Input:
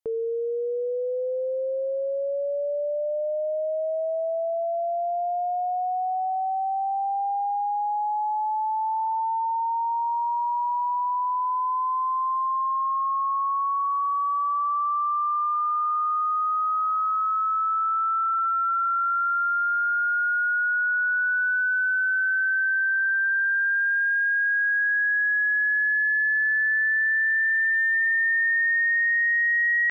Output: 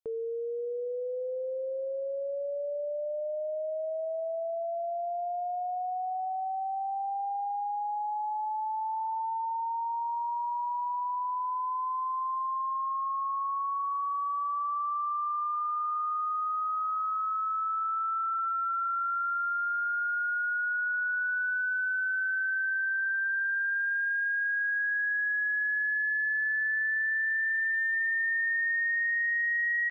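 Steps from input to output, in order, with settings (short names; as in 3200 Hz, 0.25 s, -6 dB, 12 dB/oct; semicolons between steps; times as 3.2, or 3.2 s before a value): feedback echo 0.533 s, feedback 33%, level -23.5 dB; gain -6.5 dB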